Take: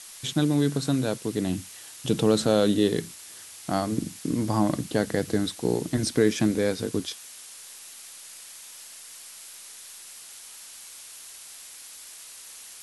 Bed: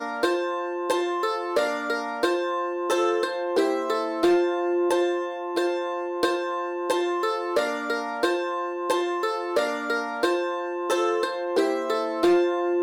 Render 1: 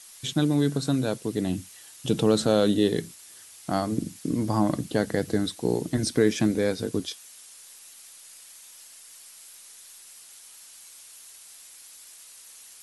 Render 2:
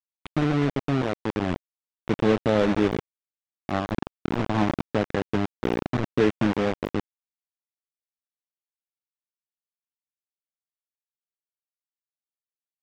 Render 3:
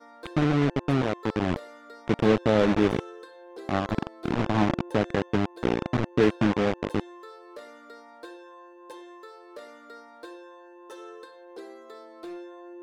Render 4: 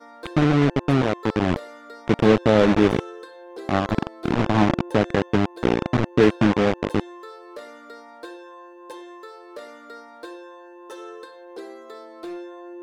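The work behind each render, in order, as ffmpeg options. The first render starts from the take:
ffmpeg -i in.wav -af "afftdn=noise_reduction=6:noise_floor=-45" out.wav
ffmpeg -i in.wav -af "aresample=8000,acrusher=bits=3:mix=0:aa=0.000001,aresample=44100,adynamicsmooth=sensitivity=1:basefreq=700" out.wav
ffmpeg -i in.wav -i bed.wav -filter_complex "[1:a]volume=-20dB[link_01];[0:a][link_01]amix=inputs=2:normalize=0" out.wav
ffmpeg -i in.wav -af "volume=5dB" out.wav

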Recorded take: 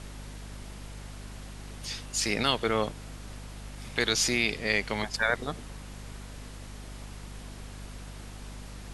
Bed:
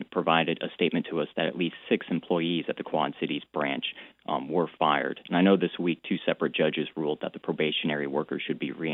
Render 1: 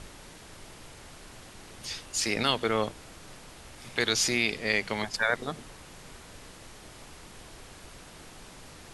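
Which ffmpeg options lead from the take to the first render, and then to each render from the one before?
ffmpeg -i in.wav -af "bandreject=frequency=50:width_type=h:width=6,bandreject=frequency=100:width_type=h:width=6,bandreject=frequency=150:width_type=h:width=6,bandreject=frequency=200:width_type=h:width=6,bandreject=frequency=250:width_type=h:width=6" out.wav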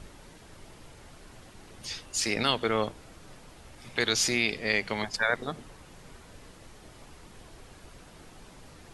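ffmpeg -i in.wav -af "afftdn=noise_reduction=6:noise_floor=-49" out.wav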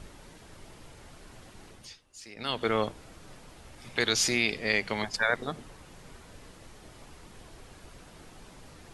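ffmpeg -i in.wav -filter_complex "[0:a]asplit=3[link_01][link_02][link_03];[link_01]atrim=end=1.97,asetpts=PTS-STARTPTS,afade=type=out:start_time=1.66:duration=0.31:silence=0.11885[link_04];[link_02]atrim=start=1.97:end=2.36,asetpts=PTS-STARTPTS,volume=-18.5dB[link_05];[link_03]atrim=start=2.36,asetpts=PTS-STARTPTS,afade=type=in:duration=0.31:silence=0.11885[link_06];[link_04][link_05][link_06]concat=n=3:v=0:a=1" out.wav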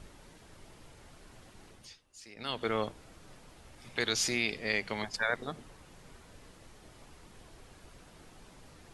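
ffmpeg -i in.wav -af "volume=-4.5dB" out.wav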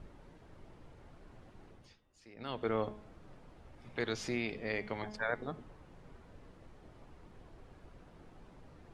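ffmpeg -i in.wav -af "lowpass=frequency=1000:poles=1,bandreject=frequency=212.2:width_type=h:width=4,bandreject=frequency=424.4:width_type=h:width=4,bandreject=frequency=636.6:width_type=h:width=4,bandreject=frequency=848.8:width_type=h:width=4,bandreject=frequency=1061:width_type=h:width=4,bandreject=frequency=1273.2:width_type=h:width=4,bandreject=frequency=1485.4:width_type=h:width=4,bandreject=frequency=1697.6:width_type=h:width=4,bandreject=frequency=1909.8:width_type=h:width=4,bandreject=frequency=2122:width_type=h:width=4,bandreject=frequency=2334.2:width_type=h:width=4,bandreject=frequency=2546.4:width_type=h:width=4,bandreject=frequency=2758.6:width_type=h:width=4,bandreject=frequency=2970.8:width_type=h:width=4,bandreject=frequency=3183:width_type=h:width=4,bandreject=frequency=3395.2:width_type=h:width=4,bandreject=frequency=3607.4:width_type=h:width=4" out.wav

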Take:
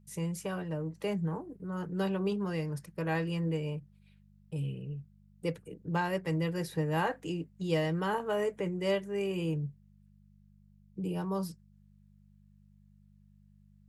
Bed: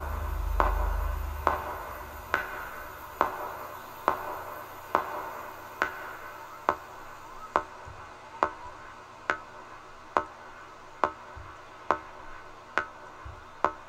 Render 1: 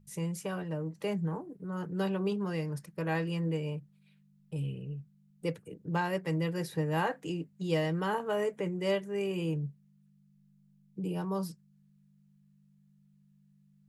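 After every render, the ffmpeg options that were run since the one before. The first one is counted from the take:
ffmpeg -i in.wav -af "bandreject=frequency=50:width_type=h:width=4,bandreject=frequency=100:width_type=h:width=4" out.wav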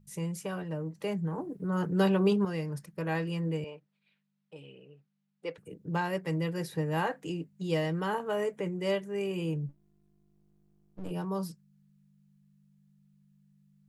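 ffmpeg -i in.wav -filter_complex "[0:a]asettb=1/sr,asplit=3[link_01][link_02][link_03];[link_01]atrim=end=3.644[link_04];[link_02]atrim=start=3.64:end=5.58,asetpts=PTS-STARTPTS,afade=type=in:duration=0.004:curve=qsin,afade=type=out:start_time=1.936:duration=0.004:curve=qsin,highpass=440,lowpass=4100[link_05];[link_03]atrim=start=5.576[link_06];[link_04][link_05]acrossfade=duration=0.004:curve1=hsin:curve2=qsin[link_07];[link_07][link_06]acrossfade=duration=0.004:curve1=qsin:curve2=hsin,asplit=3[link_08][link_09][link_10];[link_08]afade=type=out:start_time=9.68:duration=0.02[link_11];[link_09]aeval=exprs='max(val(0),0)':channel_layout=same,afade=type=in:start_time=9.68:duration=0.02,afade=type=out:start_time=11.1:duration=0.02[link_12];[link_10]afade=type=in:start_time=11.1:duration=0.02[link_13];[link_11][link_12][link_13]amix=inputs=3:normalize=0,asplit=3[link_14][link_15][link_16];[link_14]atrim=end=1.382[link_17];[link_15]atrim=start=1.378:end=2.452,asetpts=PTS-STARTPTS,volume=6.5dB[link_18];[link_16]atrim=start=2.448[link_19];[link_17][link_18]acrossfade=duration=0.004:curve1=hsin:curve2=hsin[link_20];[link_20][link_19]acrossfade=duration=0.004:curve1=hsin:curve2=hsin" out.wav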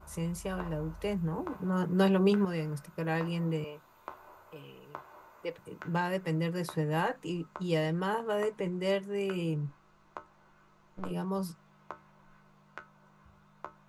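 ffmpeg -i in.wav -i bed.wav -filter_complex "[1:a]volume=-18dB[link_01];[0:a][link_01]amix=inputs=2:normalize=0" out.wav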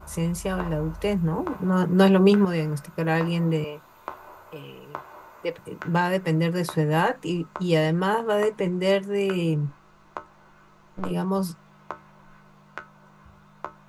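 ffmpeg -i in.wav -af "volume=8.5dB" out.wav

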